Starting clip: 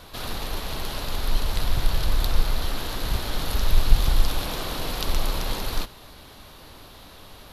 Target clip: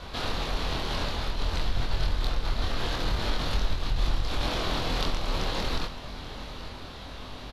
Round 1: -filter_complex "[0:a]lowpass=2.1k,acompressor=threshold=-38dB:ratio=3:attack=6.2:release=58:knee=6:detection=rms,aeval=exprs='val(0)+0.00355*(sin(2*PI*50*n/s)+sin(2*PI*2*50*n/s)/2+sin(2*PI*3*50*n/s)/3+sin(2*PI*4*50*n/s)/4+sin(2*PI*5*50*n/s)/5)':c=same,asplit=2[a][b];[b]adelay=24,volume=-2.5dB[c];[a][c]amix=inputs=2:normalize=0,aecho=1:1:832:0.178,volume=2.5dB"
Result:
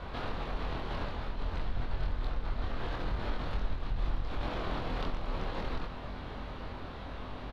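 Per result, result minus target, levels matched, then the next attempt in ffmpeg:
4000 Hz band -7.5 dB; compressor: peak gain reduction +6.5 dB
-filter_complex "[0:a]lowpass=5.4k,acompressor=threshold=-38dB:ratio=3:attack=6.2:release=58:knee=6:detection=rms,aeval=exprs='val(0)+0.00355*(sin(2*PI*50*n/s)+sin(2*PI*2*50*n/s)/2+sin(2*PI*3*50*n/s)/3+sin(2*PI*4*50*n/s)/4+sin(2*PI*5*50*n/s)/5)':c=same,asplit=2[a][b];[b]adelay=24,volume=-2.5dB[c];[a][c]amix=inputs=2:normalize=0,aecho=1:1:832:0.178,volume=2.5dB"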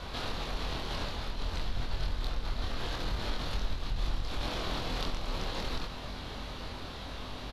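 compressor: peak gain reduction +6.5 dB
-filter_complex "[0:a]lowpass=5.4k,acompressor=threshold=-28.5dB:ratio=3:attack=6.2:release=58:knee=6:detection=rms,aeval=exprs='val(0)+0.00355*(sin(2*PI*50*n/s)+sin(2*PI*2*50*n/s)/2+sin(2*PI*3*50*n/s)/3+sin(2*PI*4*50*n/s)/4+sin(2*PI*5*50*n/s)/5)':c=same,asplit=2[a][b];[b]adelay=24,volume=-2.5dB[c];[a][c]amix=inputs=2:normalize=0,aecho=1:1:832:0.178,volume=2.5dB"

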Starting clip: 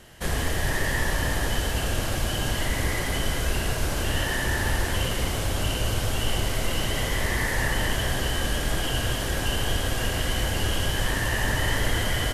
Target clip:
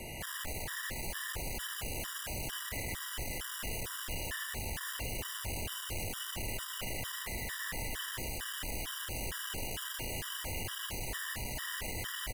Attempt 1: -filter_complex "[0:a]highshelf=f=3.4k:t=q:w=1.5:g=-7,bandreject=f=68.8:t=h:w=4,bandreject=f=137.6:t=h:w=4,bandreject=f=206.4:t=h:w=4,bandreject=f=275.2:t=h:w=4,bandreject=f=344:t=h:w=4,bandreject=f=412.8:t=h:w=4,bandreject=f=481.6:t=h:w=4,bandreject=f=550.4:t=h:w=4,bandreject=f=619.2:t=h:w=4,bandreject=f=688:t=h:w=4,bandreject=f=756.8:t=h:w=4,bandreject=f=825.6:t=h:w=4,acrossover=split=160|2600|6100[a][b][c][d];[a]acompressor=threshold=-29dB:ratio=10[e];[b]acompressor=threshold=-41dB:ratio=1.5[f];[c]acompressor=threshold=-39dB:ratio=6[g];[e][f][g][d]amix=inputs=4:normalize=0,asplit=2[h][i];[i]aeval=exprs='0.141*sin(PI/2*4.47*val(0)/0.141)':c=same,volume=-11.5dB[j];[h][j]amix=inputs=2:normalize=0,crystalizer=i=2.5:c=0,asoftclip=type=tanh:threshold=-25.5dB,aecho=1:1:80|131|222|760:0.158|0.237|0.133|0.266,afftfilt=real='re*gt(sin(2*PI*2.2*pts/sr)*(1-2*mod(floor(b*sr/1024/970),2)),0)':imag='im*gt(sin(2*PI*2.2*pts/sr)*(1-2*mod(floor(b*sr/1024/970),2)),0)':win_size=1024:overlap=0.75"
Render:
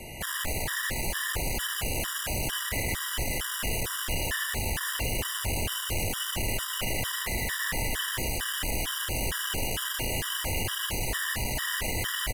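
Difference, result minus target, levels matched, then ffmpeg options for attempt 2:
soft clip: distortion -5 dB
-filter_complex "[0:a]highshelf=f=3.4k:t=q:w=1.5:g=-7,bandreject=f=68.8:t=h:w=4,bandreject=f=137.6:t=h:w=4,bandreject=f=206.4:t=h:w=4,bandreject=f=275.2:t=h:w=4,bandreject=f=344:t=h:w=4,bandreject=f=412.8:t=h:w=4,bandreject=f=481.6:t=h:w=4,bandreject=f=550.4:t=h:w=4,bandreject=f=619.2:t=h:w=4,bandreject=f=688:t=h:w=4,bandreject=f=756.8:t=h:w=4,bandreject=f=825.6:t=h:w=4,acrossover=split=160|2600|6100[a][b][c][d];[a]acompressor=threshold=-29dB:ratio=10[e];[b]acompressor=threshold=-41dB:ratio=1.5[f];[c]acompressor=threshold=-39dB:ratio=6[g];[e][f][g][d]amix=inputs=4:normalize=0,asplit=2[h][i];[i]aeval=exprs='0.141*sin(PI/2*4.47*val(0)/0.141)':c=same,volume=-11.5dB[j];[h][j]amix=inputs=2:normalize=0,crystalizer=i=2.5:c=0,asoftclip=type=tanh:threshold=-36dB,aecho=1:1:80|131|222|760:0.158|0.237|0.133|0.266,afftfilt=real='re*gt(sin(2*PI*2.2*pts/sr)*(1-2*mod(floor(b*sr/1024/970),2)),0)':imag='im*gt(sin(2*PI*2.2*pts/sr)*(1-2*mod(floor(b*sr/1024/970),2)),0)':win_size=1024:overlap=0.75"

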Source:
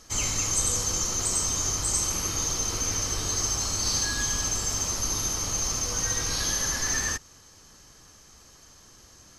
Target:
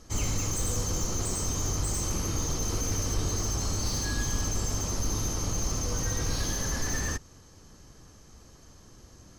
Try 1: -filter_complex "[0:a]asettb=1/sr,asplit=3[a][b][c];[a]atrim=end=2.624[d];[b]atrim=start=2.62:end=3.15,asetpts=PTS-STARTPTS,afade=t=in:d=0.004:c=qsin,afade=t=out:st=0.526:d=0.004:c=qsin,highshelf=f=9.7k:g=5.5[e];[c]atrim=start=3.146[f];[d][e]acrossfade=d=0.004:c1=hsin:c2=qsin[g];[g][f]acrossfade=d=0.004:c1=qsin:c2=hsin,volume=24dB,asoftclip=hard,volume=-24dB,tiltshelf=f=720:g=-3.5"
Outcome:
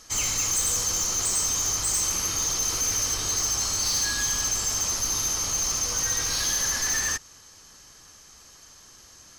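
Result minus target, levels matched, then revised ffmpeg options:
1000 Hz band -3.5 dB
-filter_complex "[0:a]asettb=1/sr,asplit=3[a][b][c];[a]atrim=end=2.624[d];[b]atrim=start=2.62:end=3.15,asetpts=PTS-STARTPTS,afade=t=in:d=0.004:c=qsin,afade=t=out:st=0.526:d=0.004:c=qsin,highshelf=f=9.7k:g=5.5[e];[c]atrim=start=3.146[f];[d][e]acrossfade=d=0.004:c1=hsin:c2=qsin[g];[g][f]acrossfade=d=0.004:c1=qsin:c2=hsin,volume=24dB,asoftclip=hard,volume=-24dB,tiltshelf=f=720:g=6"

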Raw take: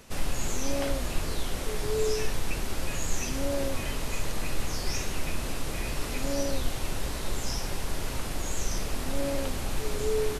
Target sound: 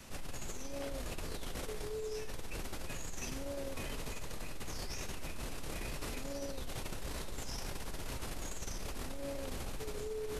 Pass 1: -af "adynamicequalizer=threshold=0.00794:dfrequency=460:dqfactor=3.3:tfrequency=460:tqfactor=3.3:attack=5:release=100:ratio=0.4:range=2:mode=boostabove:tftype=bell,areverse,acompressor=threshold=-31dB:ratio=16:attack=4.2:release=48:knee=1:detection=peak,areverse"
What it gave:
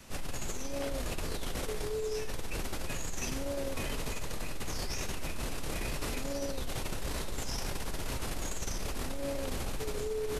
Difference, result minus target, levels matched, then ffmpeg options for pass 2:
compressor: peak gain reduction -5.5 dB
-af "adynamicequalizer=threshold=0.00794:dfrequency=460:dqfactor=3.3:tfrequency=460:tqfactor=3.3:attack=5:release=100:ratio=0.4:range=2:mode=boostabove:tftype=bell,areverse,acompressor=threshold=-37dB:ratio=16:attack=4.2:release=48:knee=1:detection=peak,areverse"

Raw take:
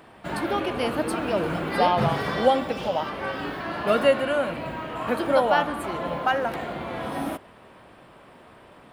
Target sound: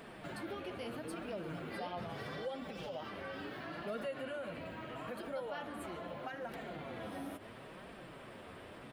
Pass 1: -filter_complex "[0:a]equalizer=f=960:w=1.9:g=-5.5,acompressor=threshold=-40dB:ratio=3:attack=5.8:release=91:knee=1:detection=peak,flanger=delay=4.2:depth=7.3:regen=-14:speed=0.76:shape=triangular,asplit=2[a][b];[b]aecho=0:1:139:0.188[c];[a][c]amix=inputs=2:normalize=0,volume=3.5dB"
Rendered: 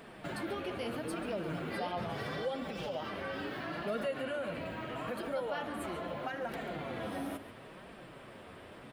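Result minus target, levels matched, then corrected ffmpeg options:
echo-to-direct +11 dB; compressor: peak gain reduction -5 dB
-filter_complex "[0:a]equalizer=f=960:w=1.9:g=-5.5,acompressor=threshold=-47.5dB:ratio=3:attack=5.8:release=91:knee=1:detection=peak,flanger=delay=4.2:depth=7.3:regen=-14:speed=0.76:shape=triangular,asplit=2[a][b];[b]aecho=0:1:139:0.0531[c];[a][c]amix=inputs=2:normalize=0,volume=3.5dB"

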